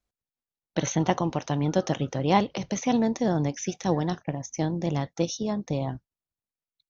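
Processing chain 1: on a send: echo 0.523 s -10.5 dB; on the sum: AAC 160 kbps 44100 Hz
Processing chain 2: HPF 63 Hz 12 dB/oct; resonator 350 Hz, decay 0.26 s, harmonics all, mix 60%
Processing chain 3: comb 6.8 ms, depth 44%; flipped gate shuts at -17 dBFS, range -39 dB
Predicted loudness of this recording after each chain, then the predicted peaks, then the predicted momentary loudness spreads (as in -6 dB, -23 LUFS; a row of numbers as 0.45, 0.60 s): -27.0, -34.5, -37.0 LUFS; -8.5, -15.5, -15.0 dBFS; 10, 7, 13 LU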